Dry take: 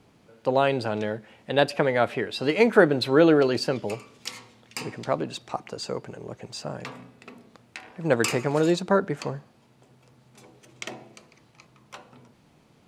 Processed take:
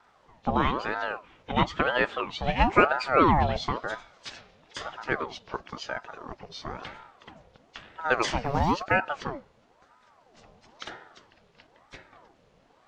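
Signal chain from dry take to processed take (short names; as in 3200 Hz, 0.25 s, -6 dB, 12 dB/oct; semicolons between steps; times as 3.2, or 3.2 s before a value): nonlinear frequency compression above 2700 Hz 1.5:1; wow and flutter 27 cents; 8.45–8.93 short-mantissa float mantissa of 6-bit; ring modulator with a swept carrier 710 Hz, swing 60%, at 1 Hz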